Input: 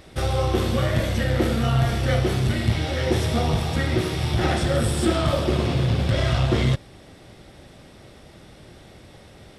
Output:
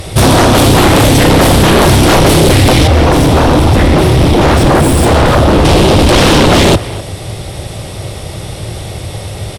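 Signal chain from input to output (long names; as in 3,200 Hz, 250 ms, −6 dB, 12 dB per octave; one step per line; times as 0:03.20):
graphic EQ with 15 bands 100 Hz +8 dB, 250 Hz −9 dB, 1,600 Hz −7 dB, 10,000 Hz +8 dB
sine wavefolder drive 17 dB, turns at −5 dBFS
0:02.87–0:05.65: high-shelf EQ 2,600 Hz −11 dB
far-end echo of a speakerphone 250 ms, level −13 dB
level +2 dB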